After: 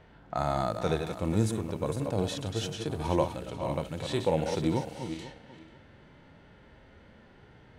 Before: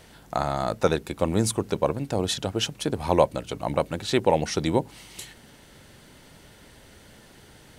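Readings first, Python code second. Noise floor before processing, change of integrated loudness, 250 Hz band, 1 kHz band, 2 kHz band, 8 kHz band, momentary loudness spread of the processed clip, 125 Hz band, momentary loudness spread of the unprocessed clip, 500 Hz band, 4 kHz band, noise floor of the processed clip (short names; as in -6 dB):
-52 dBFS, -5.5 dB, -3.5 dB, -6.0 dB, -7.0 dB, -10.0 dB, 9 LU, -1.5 dB, 10 LU, -6.0 dB, -8.5 dB, -56 dBFS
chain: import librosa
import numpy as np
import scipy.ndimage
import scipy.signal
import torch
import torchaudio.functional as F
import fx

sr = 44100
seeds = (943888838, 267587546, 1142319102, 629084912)

y = fx.reverse_delay_fb(x, sr, ms=245, feedback_pct=42, wet_db=-8.5)
y = fx.env_lowpass(y, sr, base_hz=1900.0, full_db=-23.0)
y = fx.hpss(y, sr, part='percussive', gain_db=-14)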